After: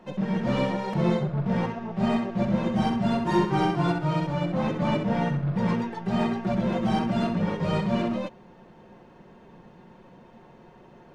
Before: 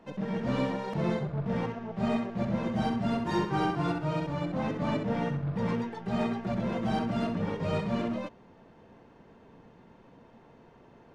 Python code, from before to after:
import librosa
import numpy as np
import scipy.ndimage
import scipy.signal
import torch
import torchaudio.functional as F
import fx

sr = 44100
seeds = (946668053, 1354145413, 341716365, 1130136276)

y = x + 0.42 * np.pad(x, (int(5.5 * sr / 1000.0), 0))[:len(x)]
y = y * librosa.db_to_amplitude(4.0)